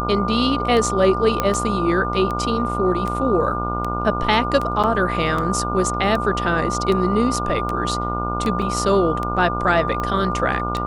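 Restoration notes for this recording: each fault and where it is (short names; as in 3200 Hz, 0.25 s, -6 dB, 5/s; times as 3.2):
buzz 60 Hz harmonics 24 -26 dBFS
tick 78 rpm -13 dBFS
tone 1200 Hz -25 dBFS
1.4 pop -5 dBFS
4.83–4.84 gap 7 ms
8.62 gap 2.8 ms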